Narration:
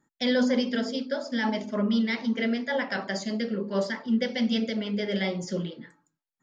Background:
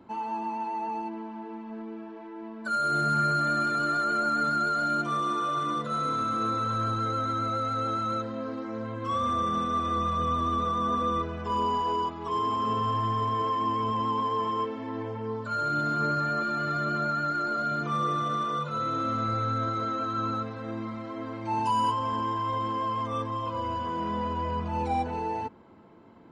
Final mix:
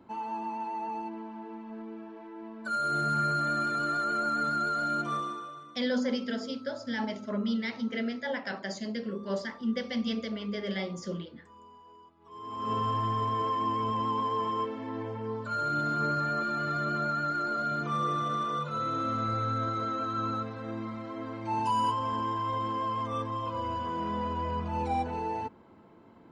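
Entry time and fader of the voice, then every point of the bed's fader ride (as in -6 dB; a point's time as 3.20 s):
5.55 s, -5.5 dB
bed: 5.15 s -3 dB
5.86 s -26.5 dB
12.16 s -26.5 dB
12.73 s -2 dB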